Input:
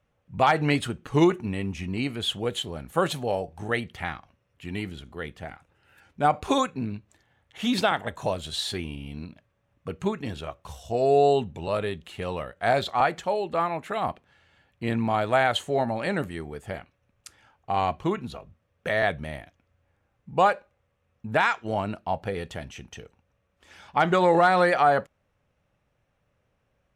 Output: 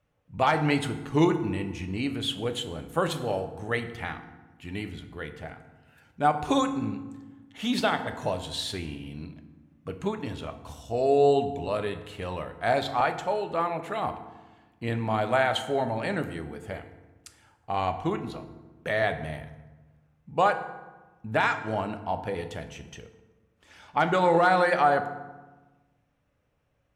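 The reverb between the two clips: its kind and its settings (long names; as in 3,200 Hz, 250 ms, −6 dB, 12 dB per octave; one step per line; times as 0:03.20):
feedback delay network reverb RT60 1.2 s, low-frequency decay 1.45×, high-frequency decay 0.6×, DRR 7.5 dB
level −2.5 dB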